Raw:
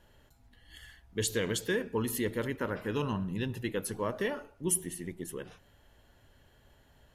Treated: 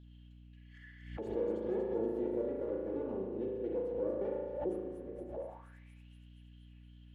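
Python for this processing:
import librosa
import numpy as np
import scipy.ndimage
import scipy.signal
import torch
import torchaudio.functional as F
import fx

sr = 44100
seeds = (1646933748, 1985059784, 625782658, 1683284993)

y = fx.lower_of_two(x, sr, delay_ms=3.5)
y = fx.low_shelf(y, sr, hz=150.0, db=12.0)
y = fx.echo_wet_highpass(y, sr, ms=236, feedback_pct=59, hz=3700.0, wet_db=-4.0)
y = fx.rev_spring(y, sr, rt60_s=1.5, pass_ms=(36,), chirp_ms=35, drr_db=-1.5)
y = fx.auto_wah(y, sr, base_hz=430.0, top_hz=3800.0, q=5.8, full_db=-29.0, direction='down')
y = fx.add_hum(y, sr, base_hz=60, snr_db=12)
y = fx.dynamic_eq(y, sr, hz=470.0, q=1.0, threshold_db=-53.0, ratio=4.0, max_db=5)
y = fx.pre_swell(y, sr, db_per_s=74.0)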